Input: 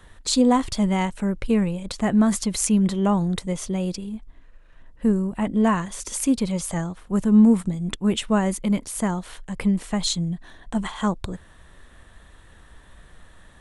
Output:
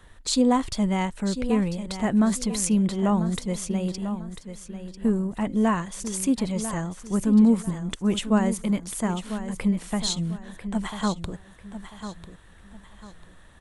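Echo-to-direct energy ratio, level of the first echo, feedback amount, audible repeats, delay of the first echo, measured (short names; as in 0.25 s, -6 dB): -10.5 dB, -11.0 dB, 31%, 3, 0.995 s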